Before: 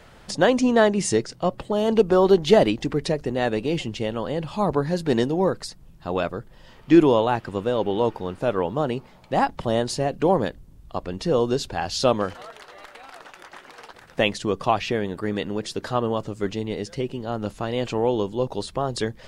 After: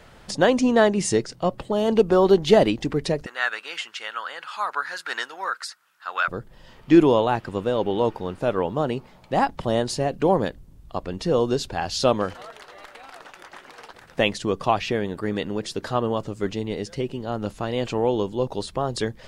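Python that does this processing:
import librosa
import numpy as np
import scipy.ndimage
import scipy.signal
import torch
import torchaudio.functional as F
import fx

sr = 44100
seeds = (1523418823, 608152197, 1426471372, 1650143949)

y = fx.highpass_res(x, sr, hz=1400.0, q=4.7, at=(3.26, 6.28))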